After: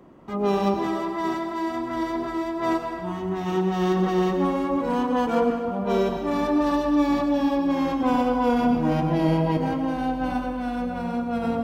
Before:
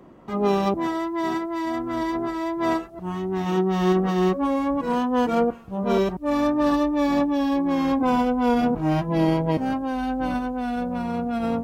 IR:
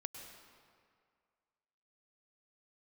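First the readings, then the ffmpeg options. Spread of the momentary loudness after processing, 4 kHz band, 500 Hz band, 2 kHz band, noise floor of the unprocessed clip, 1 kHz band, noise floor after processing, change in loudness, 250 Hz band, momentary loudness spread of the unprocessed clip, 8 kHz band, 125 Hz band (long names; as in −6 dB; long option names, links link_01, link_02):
7 LU, −1.0 dB, −0.5 dB, −0.5 dB, −39 dBFS, −0.5 dB, −31 dBFS, −0.5 dB, −1.0 dB, 6 LU, can't be measured, −0.5 dB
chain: -filter_complex "[1:a]atrim=start_sample=2205[link_01];[0:a][link_01]afir=irnorm=-1:irlink=0,volume=2dB"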